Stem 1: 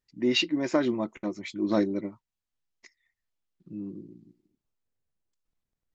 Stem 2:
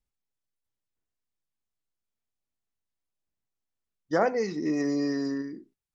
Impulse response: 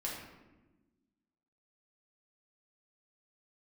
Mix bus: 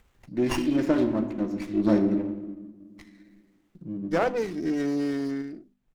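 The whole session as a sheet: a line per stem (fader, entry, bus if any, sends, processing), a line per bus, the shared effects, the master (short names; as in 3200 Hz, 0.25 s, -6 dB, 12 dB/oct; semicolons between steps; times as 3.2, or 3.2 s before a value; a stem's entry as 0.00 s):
-5.0 dB, 0.15 s, send -3.5 dB, low shelf 310 Hz +7.5 dB; auto duck -9 dB, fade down 0.20 s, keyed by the second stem
+0.5 dB, 0.00 s, no send, notches 50/100/150/200/250 Hz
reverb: on, RT60 1.2 s, pre-delay 4 ms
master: upward compressor, threshold -40 dBFS; running maximum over 9 samples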